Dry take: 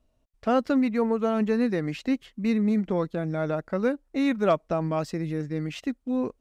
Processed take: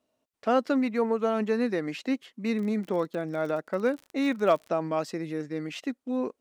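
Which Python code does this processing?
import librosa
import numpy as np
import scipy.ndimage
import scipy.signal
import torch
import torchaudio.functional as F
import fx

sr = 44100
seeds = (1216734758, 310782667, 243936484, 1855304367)

y = scipy.signal.sosfilt(scipy.signal.butter(2, 260.0, 'highpass', fs=sr, output='sos'), x)
y = fx.dmg_crackle(y, sr, seeds[0], per_s=fx.line((2.56, 22.0), (4.67, 69.0)), level_db=-35.0, at=(2.56, 4.67), fade=0.02)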